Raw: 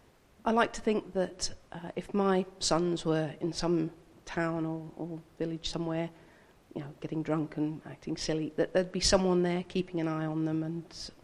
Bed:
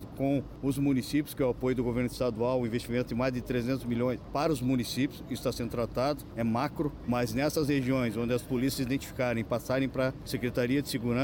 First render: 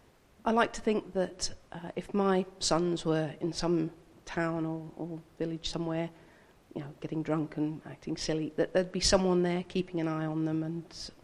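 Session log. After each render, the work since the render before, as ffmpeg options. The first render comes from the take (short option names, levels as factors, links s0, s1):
-af anull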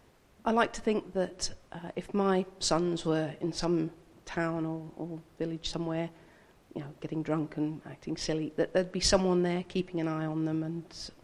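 -filter_complex "[0:a]asettb=1/sr,asplit=3[s0][s1][s2];[s0]atrim=end=2.834[s3];[s1]atrim=start=2.83:end=3.65,asetpts=PTS-STARTPTS,afade=t=in:d=0.004:c=qsin,afade=t=out:st=0.816:d=0.004:c=qsin,asplit=2[s4][s5];[s5]adelay=48,volume=0.2[s6];[s4][s6]amix=inputs=2:normalize=0,atrim=end_sample=36162[s7];[s2]atrim=start=3.646[s8];[s3][s7]acrossfade=d=0.004:c1=hsin:c2=qsin[s9];[s9][s8]acrossfade=d=0.004:c1=qsin:c2=hsin"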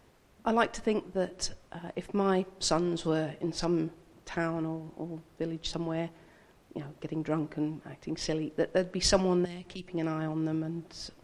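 -filter_complex "[0:a]asettb=1/sr,asplit=3[s0][s1][s2];[s0]atrim=end=9.454[s3];[s1]atrim=start=9.45:end=9.88,asetpts=PTS-STARTPTS,afade=t=in:d=0.004:c=qsin,afade=t=out:st=0.426:d=0.004:c=qsin,acrossover=split=120|3000[s4][s5][s6];[s5]acompressor=threshold=0.00794:ratio=6:attack=3.2:release=140:knee=2.83:detection=peak[s7];[s4][s7][s6]amix=inputs=3:normalize=0[s8];[s2]atrim=start=9.876[s9];[s3][s8]acrossfade=d=0.004:c1=hsin:c2=qsin[s10];[s10][s9]acrossfade=d=0.004:c1=qsin:c2=hsin"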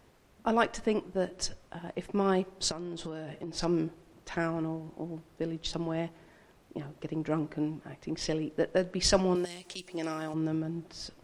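-filter_complex "[0:a]asettb=1/sr,asplit=3[s0][s1][s2];[s0]atrim=end=2.714[s3];[s1]atrim=start=2.71:end=3.56,asetpts=PTS-STARTPTS,afade=t=in:d=0.004:c=qsin,afade=t=out:st=0.846:d=0.004:c=qsin,acompressor=threshold=0.02:ratio=8:attack=3.2:release=140:knee=1:detection=peak[s4];[s2]atrim=start=3.556[s5];[s3][s4]acrossfade=d=0.004:c1=hsin:c2=qsin[s6];[s6][s5]acrossfade=d=0.004:c1=qsin:c2=hsin,asettb=1/sr,asplit=3[s7][s8][s9];[s7]atrim=end=9.354[s10];[s8]atrim=start=9.35:end=10.34,asetpts=PTS-STARTPTS,afade=t=in:d=0.004:c=qsin,afade=t=out:st=0.986:d=0.004:c=qsin,bass=f=250:g=-11,treble=f=4000:g=13[s11];[s9]atrim=start=10.336[s12];[s10][s11]acrossfade=d=0.004:c1=hsin:c2=qsin[s13];[s13][s12]acrossfade=d=0.004:c1=qsin:c2=hsin"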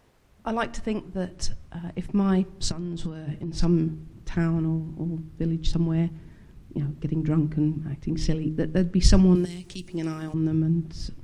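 -af "bandreject=f=78.1:t=h:w=4,bandreject=f=156.2:t=h:w=4,bandreject=f=234.3:t=h:w=4,bandreject=f=312.4:t=h:w=4,bandreject=f=390.5:t=h:w=4,asubboost=boost=11.5:cutoff=180"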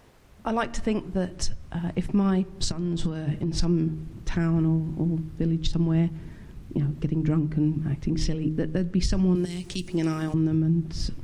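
-filter_complex "[0:a]asplit=2[s0][s1];[s1]acompressor=threshold=0.0355:ratio=6,volume=0.944[s2];[s0][s2]amix=inputs=2:normalize=0,alimiter=limit=0.178:level=0:latency=1:release=233"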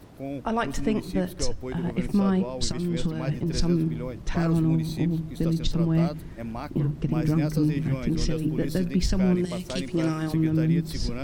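-filter_complex "[1:a]volume=0.531[s0];[0:a][s0]amix=inputs=2:normalize=0"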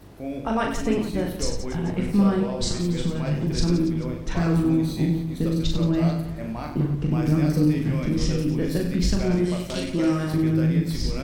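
-filter_complex "[0:a]asplit=2[s0][s1];[s1]adelay=19,volume=0.282[s2];[s0][s2]amix=inputs=2:normalize=0,aecho=1:1:40|96|174.4|284.2|437.8:0.631|0.398|0.251|0.158|0.1"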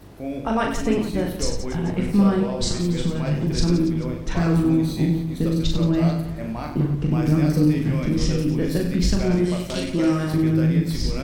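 -af "volume=1.26"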